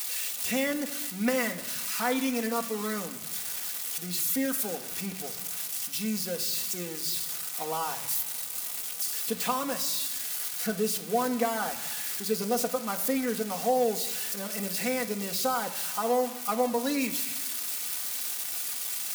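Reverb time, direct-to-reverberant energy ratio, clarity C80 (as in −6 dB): non-exponential decay, 1.0 dB, 15.0 dB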